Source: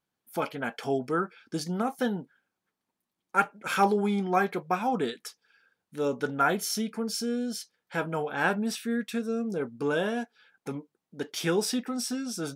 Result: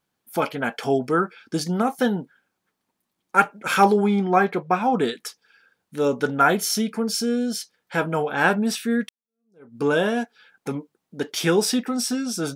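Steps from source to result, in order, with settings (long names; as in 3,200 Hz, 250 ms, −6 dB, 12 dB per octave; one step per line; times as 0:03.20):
0:04.04–0:04.99: high-shelf EQ 5,100 Hz −11 dB
0:09.09–0:09.78: fade in exponential
level +7 dB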